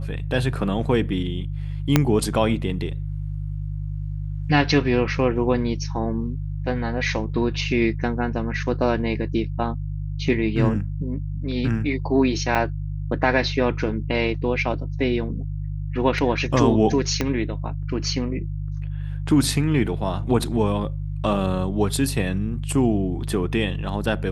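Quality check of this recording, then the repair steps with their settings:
hum 50 Hz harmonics 3 -28 dBFS
1.96 s: pop -1 dBFS
12.55 s: dropout 3.3 ms
17.21 s: pop -8 dBFS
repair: de-click; de-hum 50 Hz, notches 3; interpolate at 12.55 s, 3.3 ms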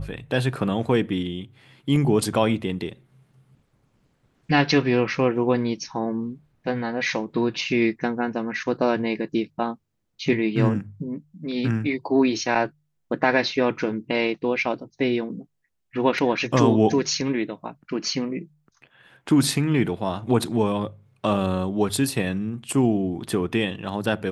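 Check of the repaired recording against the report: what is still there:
1.96 s: pop
17.21 s: pop

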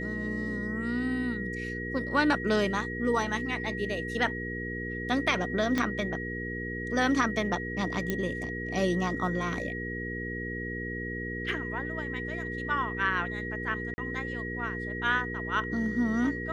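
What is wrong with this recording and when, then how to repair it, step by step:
hum 60 Hz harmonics 8 -37 dBFS
whine 1.9 kHz -36 dBFS
5.78 s: pop -14 dBFS
8.10 s: pop -15 dBFS
13.94–13.98 s: dropout 40 ms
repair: de-click; de-hum 60 Hz, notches 8; band-stop 1.9 kHz, Q 30; interpolate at 13.94 s, 40 ms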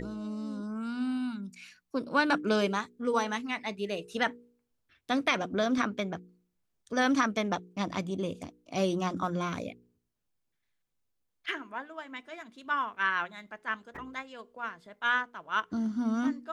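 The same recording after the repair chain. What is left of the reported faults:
5.78 s: pop
8.10 s: pop

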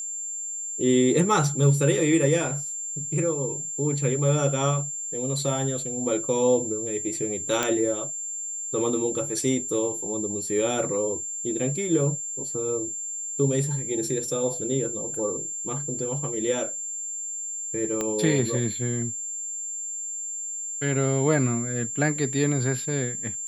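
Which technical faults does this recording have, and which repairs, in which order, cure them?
whine 7.3 kHz -30 dBFS
7.63 s: pop -9 dBFS
18.01 s: pop -14 dBFS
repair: de-click; band-stop 7.3 kHz, Q 30

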